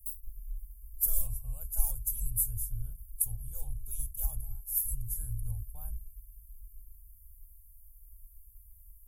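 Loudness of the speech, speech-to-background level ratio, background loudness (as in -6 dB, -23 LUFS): -34.0 LUFS, 9.0 dB, -43.0 LUFS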